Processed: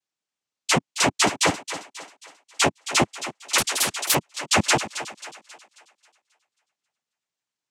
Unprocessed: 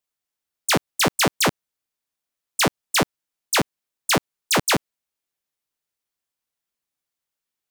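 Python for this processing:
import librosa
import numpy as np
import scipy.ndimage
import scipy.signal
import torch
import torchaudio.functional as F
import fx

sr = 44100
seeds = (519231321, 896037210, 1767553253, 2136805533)

y = fx.noise_vocoder(x, sr, seeds[0], bands=4)
y = fx.echo_thinned(y, sr, ms=269, feedback_pct=45, hz=320.0, wet_db=-11.5)
y = fx.spectral_comp(y, sr, ratio=10.0, at=(3.58, 4.15))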